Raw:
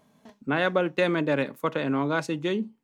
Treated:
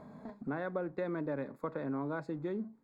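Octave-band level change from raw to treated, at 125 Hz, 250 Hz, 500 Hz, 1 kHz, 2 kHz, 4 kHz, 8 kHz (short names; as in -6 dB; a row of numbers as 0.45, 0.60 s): -10.0 dB, -10.0 dB, -11.0 dB, -12.5 dB, -16.5 dB, under -25 dB, n/a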